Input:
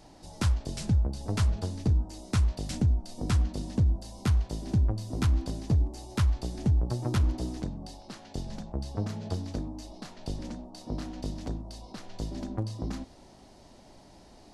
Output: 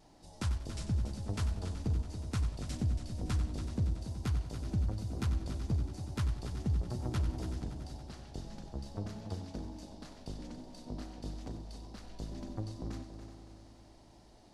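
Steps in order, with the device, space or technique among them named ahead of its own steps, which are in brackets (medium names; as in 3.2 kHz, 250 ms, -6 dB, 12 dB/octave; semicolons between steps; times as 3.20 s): multi-head tape echo (multi-head delay 94 ms, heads first and third, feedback 68%, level -11 dB; wow and flutter 24 cents); trim -8 dB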